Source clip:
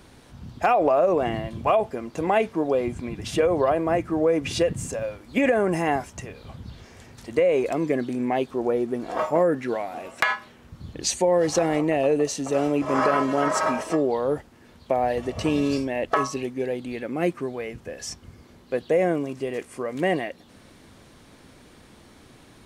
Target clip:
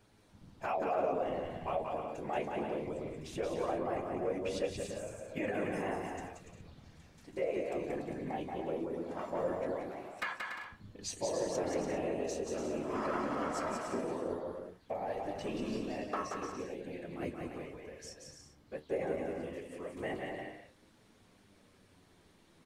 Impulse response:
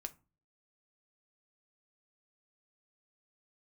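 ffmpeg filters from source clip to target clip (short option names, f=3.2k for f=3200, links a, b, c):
-af "afftfilt=real='hypot(re,im)*cos(2*PI*random(0))':imag='hypot(re,im)*sin(2*PI*random(1))':win_size=512:overlap=0.75,aecho=1:1:180|288|352.8|391.7|415:0.631|0.398|0.251|0.158|0.1,flanger=delay=9.2:depth=4.8:regen=61:speed=0.19:shape=triangular,volume=-5.5dB"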